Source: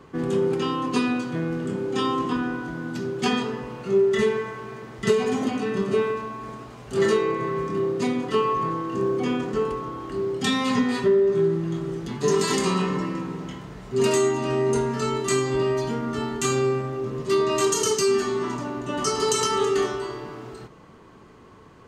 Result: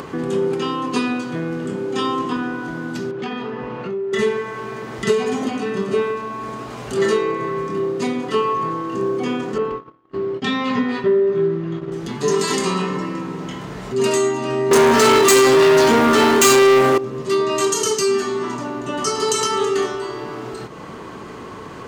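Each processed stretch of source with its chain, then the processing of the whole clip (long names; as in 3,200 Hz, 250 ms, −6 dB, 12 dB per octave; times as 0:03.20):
0:03.11–0:04.13: low-pass filter 2,900 Hz + downward compressor 3 to 1, threshold −29 dBFS
0:09.58–0:11.92: low-pass filter 3,300 Hz + notch filter 840 Hz, Q 15 + noise gate −30 dBFS, range −40 dB
0:14.71–0:16.98: high-pass filter 250 Hz + leveller curve on the samples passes 5
whole clip: low-shelf EQ 110 Hz −10 dB; upward compression, threshold −25 dBFS; level +3.5 dB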